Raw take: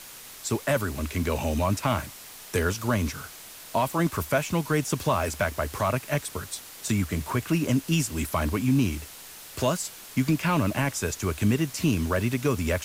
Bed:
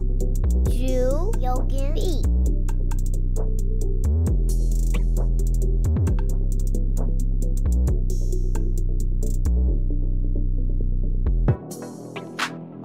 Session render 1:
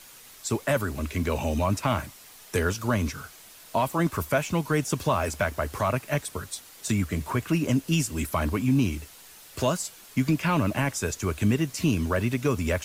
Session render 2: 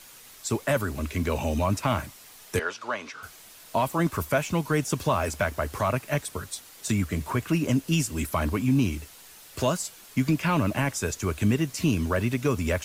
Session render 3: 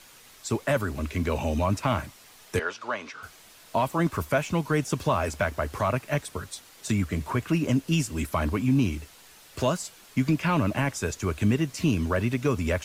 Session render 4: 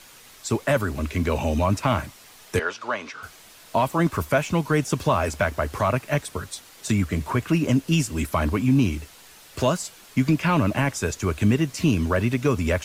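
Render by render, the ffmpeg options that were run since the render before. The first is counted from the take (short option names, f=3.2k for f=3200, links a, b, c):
-af "afftdn=nr=6:nf=-45"
-filter_complex "[0:a]asettb=1/sr,asplit=3[a][b][c];[a]atrim=end=2.594[d];[b]atrim=start=2.59:end=3.23,asetpts=PTS-STARTPTS,afade=t=in:d=0.004:c=qsin,afade=t=out:st=0.636:d=0.004:c=qsin,highpass=600,lowpass=4.2k[e];[c]atrim=start=3.226[f];[d][e]acrossfade=d=0.004:c1=hsin:c2=qsin[g];[g][f]acrossfade=d=0.004:c1=qsin:c2=hsin"
-af "highshelf=f=7.7k:g=-7.5"
-af "volume=3.5dB"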